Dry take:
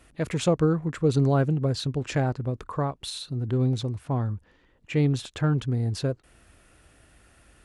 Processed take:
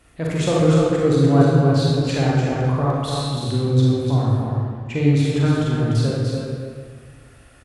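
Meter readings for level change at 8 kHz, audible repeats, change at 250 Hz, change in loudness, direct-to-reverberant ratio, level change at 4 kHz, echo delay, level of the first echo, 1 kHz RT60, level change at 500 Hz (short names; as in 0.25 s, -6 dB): +5.5 dB, 1, +8.0 dB, +7.5 dB, -6.5 dB, +6.5 dB, 0.296 s, -5.0 dB, 1.7 s, +8.0 dB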